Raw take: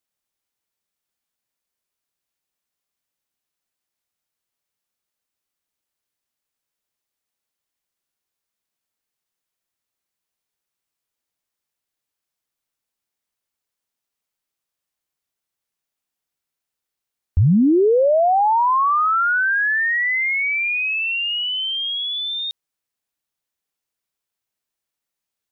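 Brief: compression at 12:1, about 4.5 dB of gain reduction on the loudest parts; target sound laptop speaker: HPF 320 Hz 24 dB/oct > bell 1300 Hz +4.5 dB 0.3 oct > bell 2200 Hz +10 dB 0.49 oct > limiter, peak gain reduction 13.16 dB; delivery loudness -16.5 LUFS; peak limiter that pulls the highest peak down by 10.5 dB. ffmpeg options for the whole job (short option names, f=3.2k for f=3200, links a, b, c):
-af "acompressor=threshold=-17dB:ratio=12,alimiter=limit=-22dB:level=0:latency=1,highpass=f=320:w=0.5412,highpass=f=320:w=1.3066,equalizer=f=1.3k:t=o:w=0.3:g=4.5,equalizer=f=2.2k:t=o:w=0.49:g=10,volume=10dB,alimiter=limit=-15dB:level=0:latency=1"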